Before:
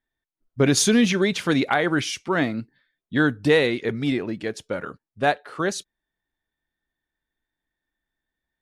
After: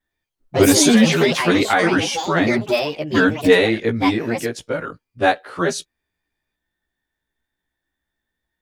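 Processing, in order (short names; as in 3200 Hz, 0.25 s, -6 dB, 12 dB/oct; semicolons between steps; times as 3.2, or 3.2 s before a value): short-time reversal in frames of 35 ms; echoes that change speed 0.106 s, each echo +5 st, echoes 3, each echo -6 dB; gain +7.5 dB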